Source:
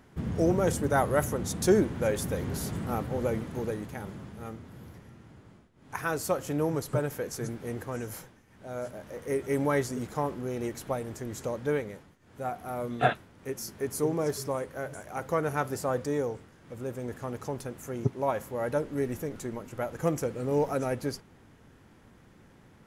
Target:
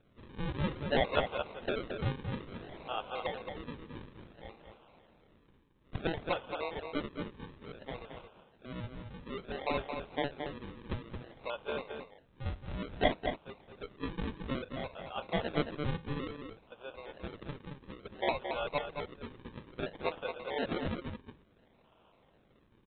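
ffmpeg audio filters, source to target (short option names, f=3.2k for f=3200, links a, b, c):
-filter_complex "[0:a]highpass=f=570:w=0.5412,highpass=f=570:w=1.3066,aresample=8000,acrusher=samples=8:mix=1:aa=0.000001:lfo=1:lforange=8:lforate=0.58,aresample=44100,asplit=2[a][b];[b]adelay=221.6,volume=-6dB,highshelf=f=4k:g=-4.99[c];[a][c]amix=inputs=2:normalize=0,volume=-2dB"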